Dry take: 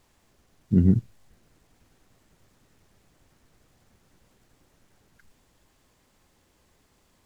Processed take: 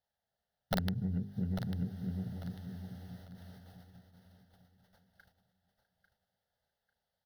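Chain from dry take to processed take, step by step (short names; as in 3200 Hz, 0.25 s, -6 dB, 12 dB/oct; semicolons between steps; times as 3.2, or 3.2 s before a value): regenerating reverse delay 0.326 s, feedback 58%, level -3 dB; notches 50/100/150/200/250/300/350/400/450 Hz; gate -54 dBFS, range -26 dB; HPF 130 Hz 6 dB/oct; bell 770 Hz +4.5 dB 0.6 oct; compressor 16:1, threshold -31 dBFS, peak gain reduction 16 dB; wrapped overs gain 25 dB; fixed phaser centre 1600 Hz, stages 8; feedback echo 0.846 s, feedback 31%, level -10.5 dB; gain +5 dB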